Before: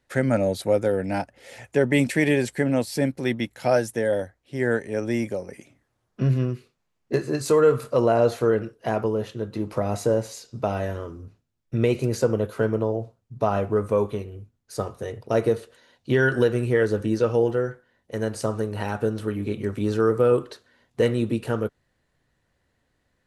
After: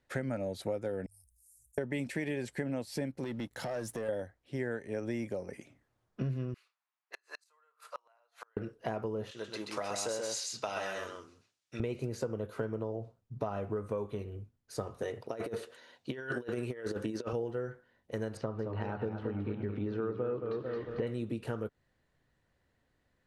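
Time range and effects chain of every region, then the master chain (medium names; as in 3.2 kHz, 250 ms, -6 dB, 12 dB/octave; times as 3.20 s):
1.06–1.78 s: inverse Chebyshev band-stop 180–3300 Hz, stop band 60 dB + tilt EQ +1.5 dB/octave + level flattener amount 50%
3.24–4.09 s: compression 3:1, threshold -38 dBFS + peaking EQ 2.4 kHz -9.5 dB 0.37 oct + waveshaping leveller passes 2
6.54–8.57 s: high-pass 900 Hz 24 dB/octave + inverted gate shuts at -25 dBFS, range -35 dB + tape noise reduction on one side only decoder only
9.31–11.80 s: frequency weighting ITU-R 468 + delay 130 ms -3.5 dB
15.01–17.33 s: high-pass 330 Hz 6 dB/octave + compressor with a negative ratio -28 dBFS, ratio -0.5
18.37–21.07 s: upward compressor, threshold -28 dBFS + distance through air 280 m + modulated delay 223 ms, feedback 49%, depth 115 cents, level -7 dB
whole clip: treble shelf 6 kHz -6 dB; compression 6:1, threshold -28 dBFS; trim -4 dB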